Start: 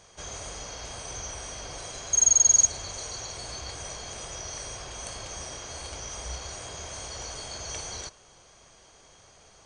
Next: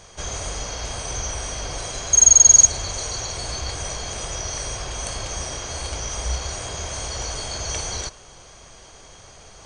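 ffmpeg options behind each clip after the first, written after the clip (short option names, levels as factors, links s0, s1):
-af "lowshelf=f=70:g=8,areverse,acompressor=mode=upward:threshold=0.00355:ratio=2.5,areverse,volume=2.51"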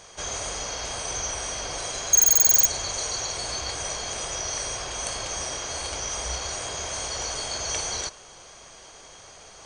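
-af "aeval=exprs='0.316*(abs(mod(val(0)/0.316+3,4)-2)-1)':c=same,lowshelf=f=190:g=-11"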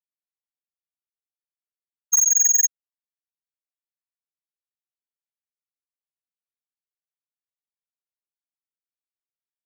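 -af "afftfilt=real='re*gte(hypot(re,im),0.794)':imag='im*gte(hypot(re,im),0.794)':win_size=1024:overlap=0.75,volume=13.3,asoftclip=hard,volume=0.075,volume=2.66"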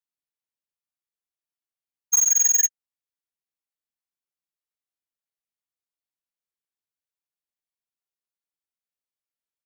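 -filter_complex "[0:a]acrossover=split=4900[s0][s1];[s0]asplit=2[s2][s3];[s3]adelay=21,volume=0.211[s4];[s2][s4]amix=inputs=2:normalize=0[s5];[s1]acrusher=bits=4:mode=log:mix=0:aa=0.000001[s6];[s5][s6]amix=inputs=2:normalize=0,volume=0.841"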